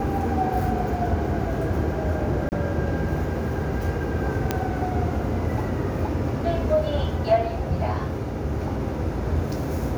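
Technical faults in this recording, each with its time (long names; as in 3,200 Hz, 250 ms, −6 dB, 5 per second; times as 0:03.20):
0:02.49–0:02.52: drop-out 29 ms
0:04.51: click −8 dBFS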